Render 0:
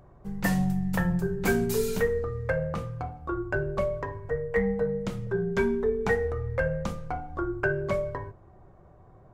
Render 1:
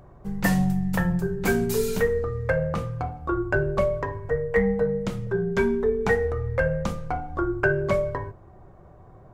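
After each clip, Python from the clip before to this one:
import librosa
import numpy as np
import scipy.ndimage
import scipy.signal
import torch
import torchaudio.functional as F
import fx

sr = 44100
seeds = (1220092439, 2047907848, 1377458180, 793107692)

y = fx.rider(x, sr, range_db=3, speed_s=2.0)
y = y * 10.0 ** (3.5 / 20.0)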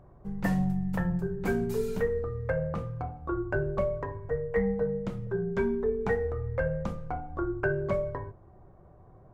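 y = fx.high_shelf(x, sr, hz=2300.0, db=-11.5)
y = y * 10.0 ** (-5.0 / 20.0)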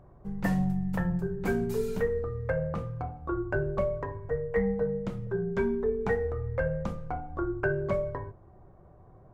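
y = x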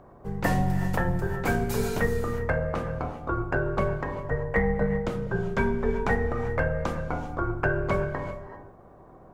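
y = fx.spec_clip(x, sr, under_db=14)
y = fx.rev_gated(y, sr, seeds[0], gate_ms=420, shape='rising', drr_db=9.0)
y = y * 10.0 ** (3.0 / 20.0)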